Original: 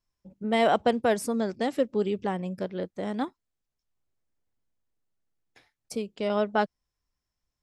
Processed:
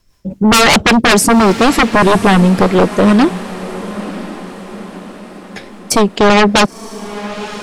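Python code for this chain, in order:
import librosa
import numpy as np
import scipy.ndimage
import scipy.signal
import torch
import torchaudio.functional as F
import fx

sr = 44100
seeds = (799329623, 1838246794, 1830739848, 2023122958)

y = fx.rotary(x, sr, hz=5.0)
y = fx.fold_sine(y, sr, drive_db=17, ceiling_db=-12.5)
y = fx.echo_diffused(y, sr, ms=999, feedback_pct=50, wet_db=-14.5)
y = y * 10.0 ** (7.5 / 20.0)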